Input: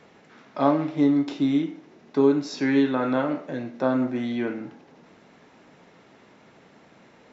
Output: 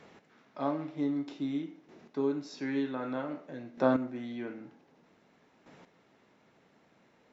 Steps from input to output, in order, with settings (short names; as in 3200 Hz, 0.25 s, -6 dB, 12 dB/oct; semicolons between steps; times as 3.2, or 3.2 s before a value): chopper 0.53 Hz, depth 65%, duty 10%; gain -2.5 dB